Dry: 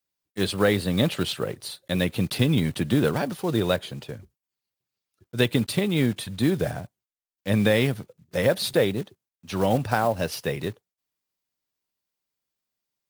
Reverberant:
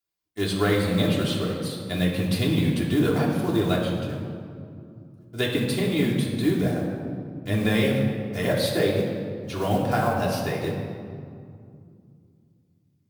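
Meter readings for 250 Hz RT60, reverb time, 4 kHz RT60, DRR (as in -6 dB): 3.6 s, 2.4 s, 1.3 s, -4.0 dB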